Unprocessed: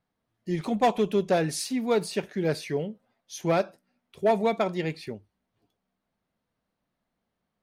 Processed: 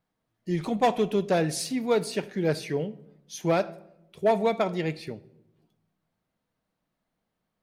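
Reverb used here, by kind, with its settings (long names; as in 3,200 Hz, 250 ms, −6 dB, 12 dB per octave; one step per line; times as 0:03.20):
rectangular room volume 3,000 cubic metres, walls furnished, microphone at 0.57 metres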